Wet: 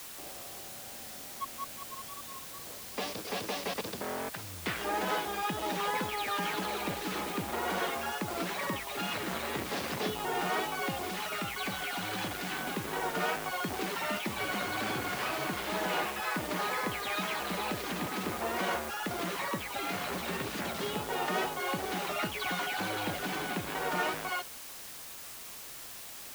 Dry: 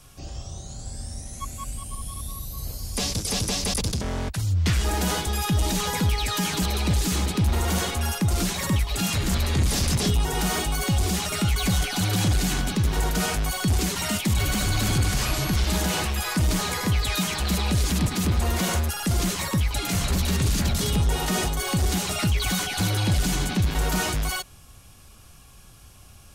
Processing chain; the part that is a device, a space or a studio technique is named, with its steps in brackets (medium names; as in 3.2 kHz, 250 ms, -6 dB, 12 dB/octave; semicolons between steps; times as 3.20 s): wax cylinder (band-pass 380–2300 Hz; wow and flutter; white noise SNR 10 dB); 11.05–12.61 s: peaking EQ 440 Hz -4 dB 2.6 oct; trim -1.5 dB